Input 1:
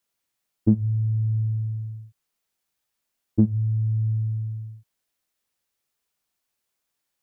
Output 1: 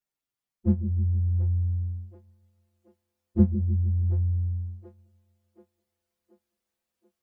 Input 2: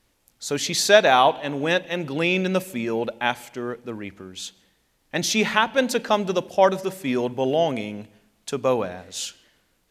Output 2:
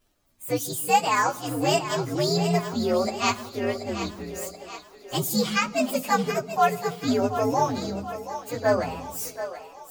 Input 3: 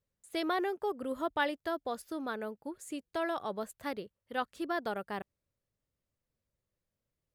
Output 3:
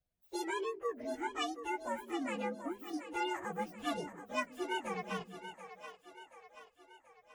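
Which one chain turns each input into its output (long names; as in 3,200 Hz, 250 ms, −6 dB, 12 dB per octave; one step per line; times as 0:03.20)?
partials spread apart or drawn together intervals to 127%
speech leveller within 4 dB 0.5 s
echo with a time of its own for lows and highs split 380 Hz, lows 155 ms, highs 731 ms, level −10.5 dB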